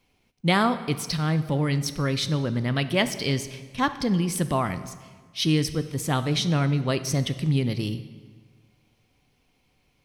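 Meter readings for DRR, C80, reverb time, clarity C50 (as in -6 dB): 10.5 dB, 14.5 dB, 1.5 s, 13.0 dB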